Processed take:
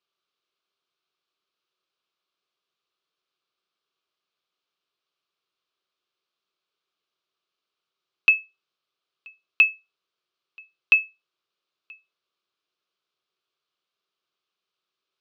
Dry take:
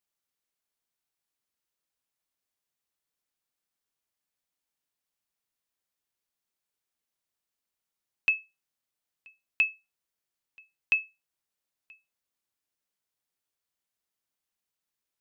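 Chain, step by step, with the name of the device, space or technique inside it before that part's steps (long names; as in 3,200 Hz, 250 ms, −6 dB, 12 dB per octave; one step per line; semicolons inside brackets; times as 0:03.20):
kitchen radio (loudspeaker in its box 170–4,000 Hz, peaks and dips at 250 Hz −10 dB, 380 Hz +8 dB, 850 Hz −7 dB, 1,200 Hz +8 dB, 1,900 Hz −10 dB)
high-shelf EQ 3,000 Hz +10.5 dB
level +5 dB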